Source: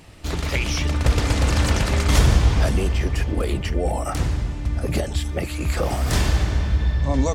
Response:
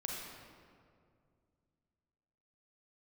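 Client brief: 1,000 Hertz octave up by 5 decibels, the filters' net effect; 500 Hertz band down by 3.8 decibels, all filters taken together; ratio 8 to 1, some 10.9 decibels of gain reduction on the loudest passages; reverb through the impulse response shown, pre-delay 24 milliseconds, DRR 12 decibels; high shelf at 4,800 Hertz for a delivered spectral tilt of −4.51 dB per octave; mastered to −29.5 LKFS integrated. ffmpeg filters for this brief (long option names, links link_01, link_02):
-filter_complex "[0:a]equalizer=frequency=500:width_type=o:gain=-7.5,equalizer=frequency=1000:width_type=o:gain=8.5,highshelf=frequency=4800:gain=4,acompressor=threshold=-22dB:ratio=8,asplit=2[link_01][link_02];[1:a]atrim=start_sample=2205,adelay=24[link_03];[link_02][link_03]afir=irnorm=-1:irlink=0,volume=-13dB[link_04];[link_01][link_04]amix=inputs=2:normalize=0,volume=-2dB"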